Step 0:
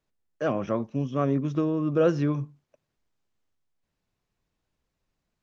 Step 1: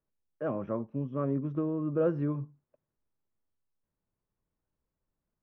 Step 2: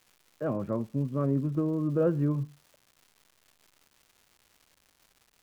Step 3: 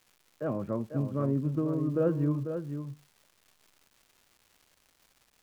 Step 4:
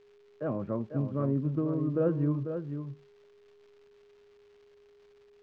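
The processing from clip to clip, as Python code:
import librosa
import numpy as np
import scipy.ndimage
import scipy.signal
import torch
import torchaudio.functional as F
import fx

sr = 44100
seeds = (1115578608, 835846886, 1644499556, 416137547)

y1 = scipy.signal.sosfilt(scipy.signal.butter(2, 1300.0, 'lowpass', fs=sr, output='sos'), x)
y1 = fx.notch(y1, sr, hz=720.0, q=12.0)
y1 = y1 * 10.0 ** (-5.5 / 20.0)
y2 = fx.low_shelf(y1, sr, hz=220.0, db=7.5)
y2 = fx.dmg_crackle(y2, sr, seeds[0], per_s=350.0, level_db=-48.0)
y3 = y2 + 10.0 ** (-8.0 / 20.0) * np.pad(y2, (int(495 * sr / 1000.0), 0))[:len(y2)]
y3 = y3 * 10.0 ** (-1.5 / 20.0)
y4 = fx.air_absorb(y3, sr, metres=180.0)
y4 = y4 + 10.0 ** (-57.0 / 20.0) * np.sin(2.0 * np.pi * 410.0 * np.arange(len(y4)) / sr)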